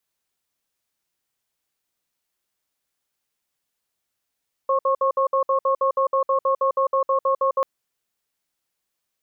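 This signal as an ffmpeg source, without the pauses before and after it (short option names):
-f lavfi -i "aevalsrc='0.106*(sin(2*PI*536*t)+sin(2*PI*1090*t))*clip(min(mod(t,0.16),0.1-mod(t,0.16))/0.005,0,1)':d=2.94:s=44100"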